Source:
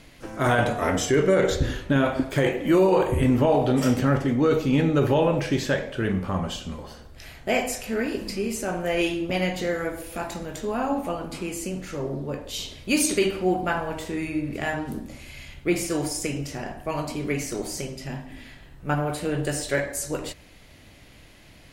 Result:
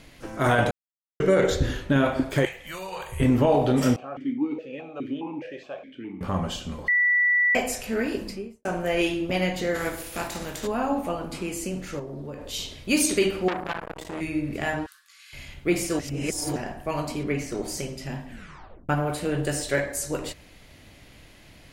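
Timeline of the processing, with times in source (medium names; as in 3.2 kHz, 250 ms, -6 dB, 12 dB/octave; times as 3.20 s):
0.71–1.20 s: mute
2.45–3.20 s: amplifier tone stack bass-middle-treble 10-0-10
3.96–6.21 s: stepped vowel filter 4.8 Hz
6.88–7.55 s: bleep 1.96 kHz -17.5 dBFS
8.14–8.65 s: studio fade out
9.74–10.66 s: spectral contrast reduction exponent 0.68
11.99–12.45 s: compression 4:1, threshold -33 dBFS
13.48–14.21 s: transformer saturation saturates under 2.1 kHz
14.86–15.33 s: rippled Chebyshev high-pass 1.1 kHz, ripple 6 dB
15.99–16.56 s: reverse
17.23–17.68 s: treble shelf 5 kHz -10.5 dB
18.28 s: tape stop 0.61 s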